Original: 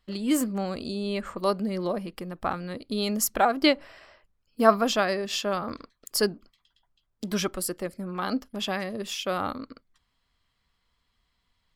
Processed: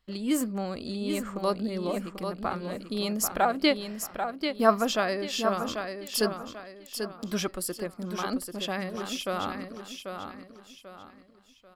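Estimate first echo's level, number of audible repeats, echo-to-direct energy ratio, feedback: −7.0 dB, 4, −6.5 dB, 35%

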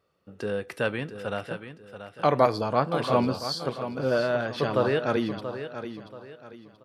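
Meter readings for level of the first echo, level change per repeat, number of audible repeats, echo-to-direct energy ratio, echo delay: −10.5 dB, −9.5 dB, 3, −10.0 dB, 682 ms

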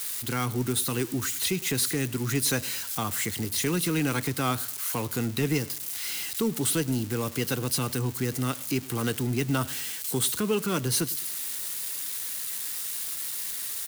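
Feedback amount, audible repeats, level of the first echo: 40%, 2, −21.0 dB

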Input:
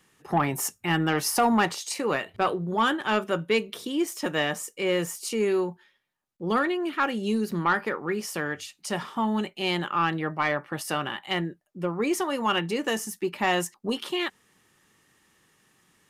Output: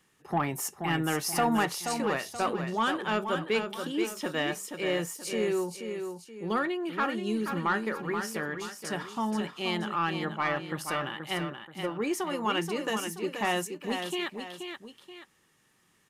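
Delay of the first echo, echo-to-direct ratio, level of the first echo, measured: 479 ms, −6.5 dB, −7.0 dB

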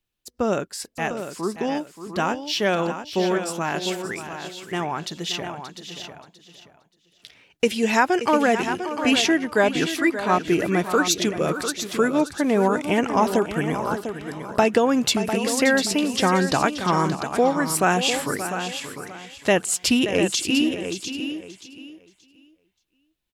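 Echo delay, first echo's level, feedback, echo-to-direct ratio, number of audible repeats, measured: 578 ms, −11.5 dB, repeats not evenly spaced, −7.0 dB, 5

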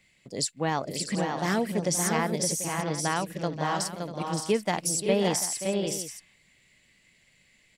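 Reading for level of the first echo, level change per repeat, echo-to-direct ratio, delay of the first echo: −12.0 dB, repeats not evenly spaced, −3.0 dB, 528 ms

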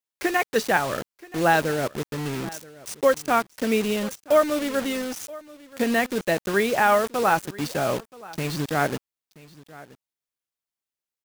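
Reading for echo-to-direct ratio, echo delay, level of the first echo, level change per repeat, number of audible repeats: −20.5 dB, 978 ms, −20.5 dB, repeats not evenly spaced, 1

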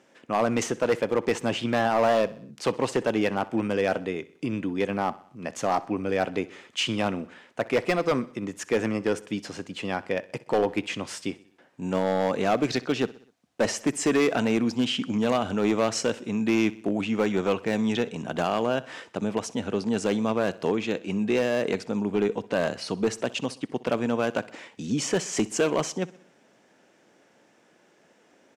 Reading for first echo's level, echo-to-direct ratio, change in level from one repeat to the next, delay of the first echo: −20.0 dB, −18.5 dB, −5.5 dB, 63 ms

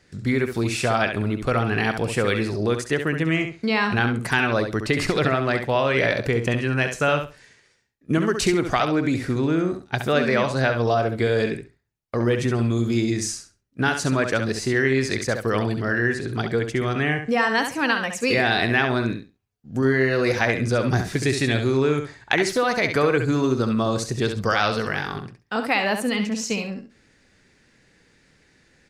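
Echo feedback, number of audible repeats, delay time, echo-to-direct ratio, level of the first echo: 18%, 2, 68 ms, −7.5 dB, −7.5 dB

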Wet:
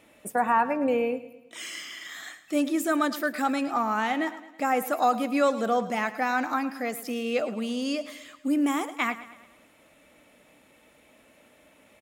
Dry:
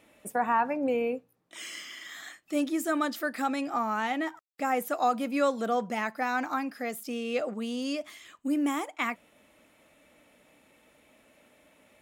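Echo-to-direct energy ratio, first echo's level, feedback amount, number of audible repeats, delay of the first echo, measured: −13.5 dB, −15.0 dB, 51%, 4, 108 ms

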